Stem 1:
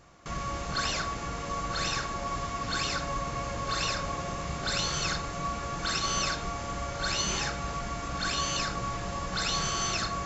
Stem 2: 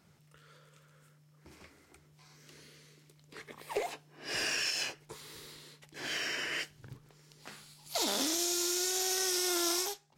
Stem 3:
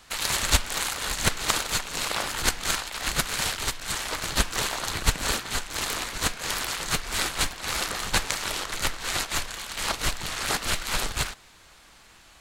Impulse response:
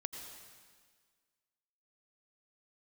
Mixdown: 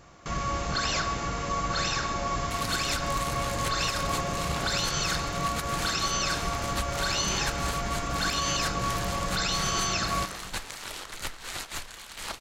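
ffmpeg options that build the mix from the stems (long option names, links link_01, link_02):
-filter_complex "[0:a]volume=1dB,asplit=2[link_01][link_02];[link_02]volume=-5.5dB[link_03];[2:a]adelay=2400,volume=-9dB,asplit=2[link_04][link_05];[link_05]volume=-19dB[link_06];[3:a]atrim=start_sample=2205[link_07];[link_03][link_06]amix=inputs=2:normalize=0[link_08];[link_08][link_07]afir=irnorm=-1:irlink=0[link_09];[link_01][link_04][link_09]amix=inputs=3:normalize=0,alimiter=limit=-17.5dB:level=0:latency=1:release=92"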